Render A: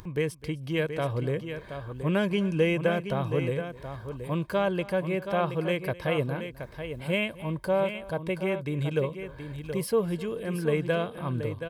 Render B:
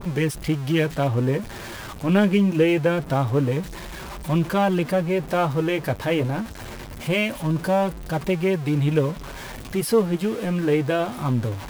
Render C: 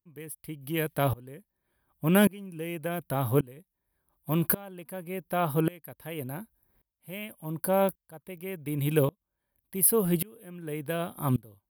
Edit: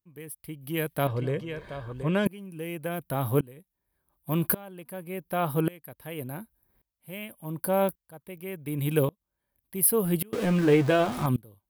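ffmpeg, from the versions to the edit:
-filter_complex "[2:a]asplit=3[a][b][c];[a]atrim=end=1.072[d];[0:a]atrim=start=1.068:end=2.262[e];[b]atrim=start=2.258:end=10.332[f];[1:a]atrim=start=10.328:end=11.262[g];[c]atrim=start=11.258[h];[d][e]acrossfade=d=0.004:c1=hsin:c2=hsin[i];[i][f]acrossfade=d=0.004:c1=hsin:c2=hsin[j];[j][g]acrossfade=d=0.004:c1=hsin:c2=hsin[k];[k][h]acrossfade=d=0.004:c1=hsin:c2=hsin"

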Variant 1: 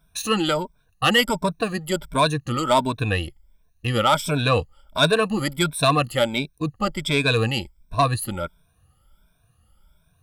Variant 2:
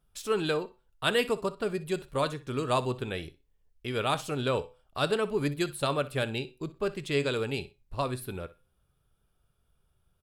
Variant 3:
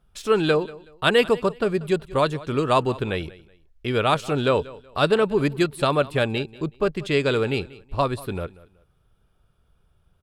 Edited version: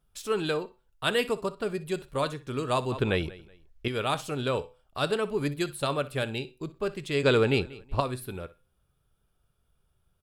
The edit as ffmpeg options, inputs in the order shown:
-filter_complex "[2:a]asplit=2[a][b];[1:a]asplit=3[c][d][e];[c]atrim=end=2.922[f];[a]atrim=start=2.918:end=3.882[g];[d]atrim=start=3.878:end=7.232[h];[b]atrim=start=7.228:end=8.002[i];[e]atrim=start=7.998[j];[f][g]acrossfade=d=0.004:c1=hsin:c2=hsin[k];[k][h]acrossfade=d=0.004:c1=hsin:c2=hsin[l];[l][i]acrossfade=d=0.004:c1=hsin:c2=hsin[m];[m][j]acrossfade=d=0.004:c1=hsin:c2=hsin"

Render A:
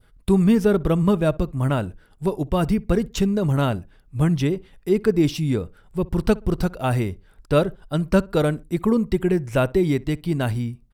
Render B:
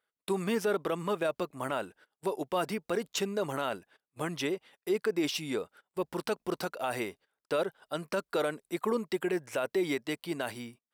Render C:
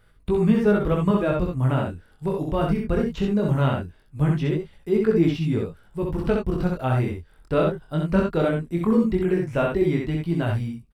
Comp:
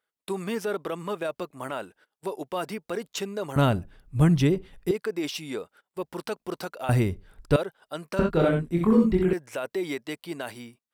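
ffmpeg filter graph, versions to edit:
-filter_complex "[0:a]asplit=2[a][b];[1:a]asplit=4[c][d][e][f];[c]atrim=end=3.562[g];[a]atrim=start=3.558:end=4.912[h];[d]atrim=start=4.908:end=6.892[i];[b]atrim=start=6.888:end=7.562[j];[e]atrim=start=7.558:end=8.192[k];[2:a]atrim=start=8.188:end=9.332[l];[f]atrim=start=9.328[m];[g][h]acrossfade=d=0.004:c1=hsin:c2=hsin[n];[n][i]acrossfade=d=0.004:c1=hsin:c2=hsin[o];[o][j]acrossfade=d=0.004:c1=hsin:c2=hsin[p];[p][k]acrossfade=d=0.004:c1=hsin:c2=hsin[q];[q][l]acrossfade=d=0.004:c1=hsin:c2=hsin[r];[r][m]acrossfade=d=0.004:c1=hsin:c2=hsin"

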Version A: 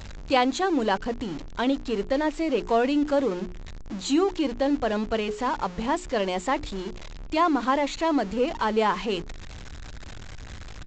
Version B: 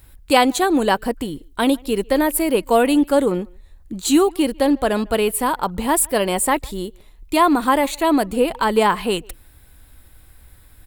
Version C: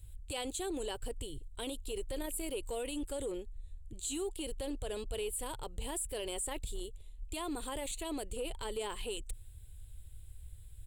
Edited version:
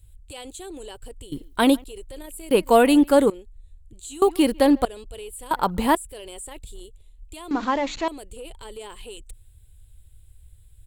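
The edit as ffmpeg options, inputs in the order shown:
-filter_complex "[1:a]asplit=4[a][b][c][d];[2:a]asplit=6[e][f][g][h][i][j];[e]atrim=end=1.322[k];[a]atrim=start=1.318:end=1.842[l];[f]atrim=start=1.838:end=2.512[m];[b]atrim=start=2.508:end=3.302[n];[g]atrim=start=3.298:end=4.222[o];[c]atrim=start=4.218:end=4.852[p];[h]atrim=start=4.848:end=5.512[q];[d]atrim=start=5.508:end=5.952[r];[i]atrim=start=5.948:end=7.512[s];[0:a]atrim=start=7.508:end=8.082[t];[j]atrim=start=8.078[u];[k][l]acrossfade=d=0.004:c1=hsin:c2=hsin[v];[v][m]acrossfade=d=0.004:c1=hsin:c2=hsin[w];[w][n]acrossfade=d=0.004:c1=hsin:c2=hsin[x];[x][o]acrossfade=d=0.004:c1=hsin:c2=hsin[y];[y][p]acrossfade=d=0.004:c1=hsin:c2=hsin[z];[z][q]acrossfade=d=0.004:c1=hsin:c2=hsin[aa];[aa][r]acrossfade=d=0.004:c1=hsin:c2=hsin[ab];[ab][s]acrossfade=d=0.004:c1=hsin:c2=hsin[ac];[ac][t]acrossfade=d=0.004:c1=hsin:c2=hsin[ad];[ad][u]acrossfade=d=0.004:c1=hsin:c2=hsin"

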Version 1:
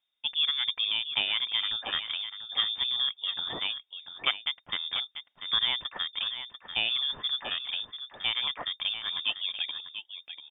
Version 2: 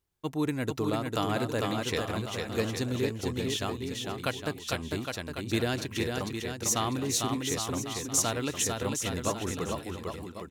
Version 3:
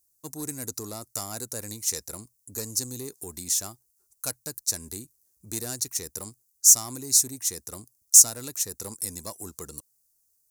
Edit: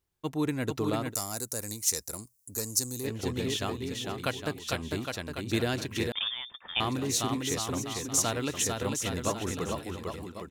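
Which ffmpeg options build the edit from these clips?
-filter_complex "[1:a]asplit=3[a][b][c];[a]atrim=end=1.15[d];[2:a]atrim=start=1.09:end=3.09[e];[b]atrim=start=3.03:end=6.122[f];[0:a]atrim=start=6.118:end=6.802[g];[c]atrim=start=6.798[h];[d][e]acrossfade=d=0.06:c1=tri:c2=tri[i];[i][f]acrossfade=d=0.06:c1=tri:c2=tri[j];[j][g]acrossfade=d=0.004:c1=hsin:c2=hsin[k];[k][h]acrossfade=d=0.004:c1=hsin:c2=hsin"

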